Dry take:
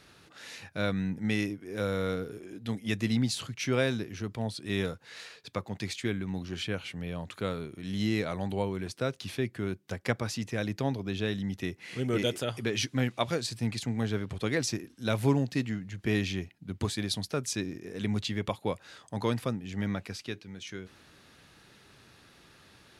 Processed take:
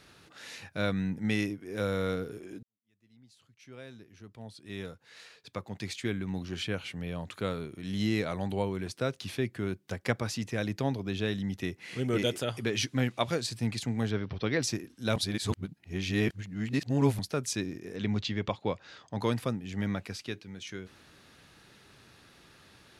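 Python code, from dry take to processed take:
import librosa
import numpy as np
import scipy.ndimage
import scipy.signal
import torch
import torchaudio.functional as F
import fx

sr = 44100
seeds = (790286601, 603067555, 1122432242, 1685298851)

y = fx.brickwall_lowpass(x, sr, high_hz=6100.0, at=(14.1, 14.61), fade=0.02)
y = fx.lowpass(y, sr, hz=6100.0, slope=24, at=(17.96, 19.2))
y = fx.edit(y, sr, fx.fade_in_span(start_s=2.63, length_s=3.66, curve='qua'),
    fx.reverse_span(start_s=15.16, length_s=2.03), tone=tone)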